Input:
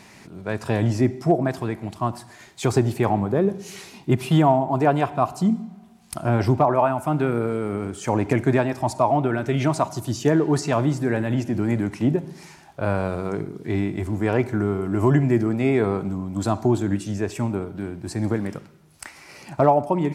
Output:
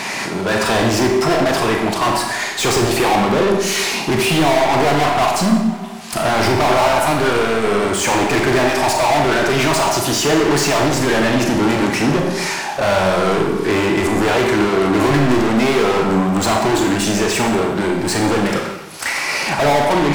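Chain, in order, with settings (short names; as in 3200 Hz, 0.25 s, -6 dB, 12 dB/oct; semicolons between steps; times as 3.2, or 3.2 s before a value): overdrive pedal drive 38 dB, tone 5700 Hz, clips at -5.5 dBFS; Schroeder reverb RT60 0.75 s, combs from 28 ms, DRR 3 dB; gain -4.5 dB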